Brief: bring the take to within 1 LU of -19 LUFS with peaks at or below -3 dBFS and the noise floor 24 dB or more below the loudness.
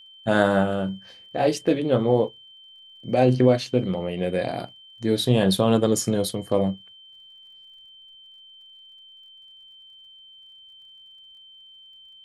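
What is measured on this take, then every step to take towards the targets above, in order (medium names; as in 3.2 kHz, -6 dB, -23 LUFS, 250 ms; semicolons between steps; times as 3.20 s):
tick rate 36 per s; steady tone 3.1 kHz; tone level -46 dBFS; loudness -22.5 LUFS; peak level -5.5 dBFS; loudness target -19.0 LUFS
-> de-click; band-stop 3.1 kHz, Q 30; trim +3.5 dB; peak limiter -3 dBFS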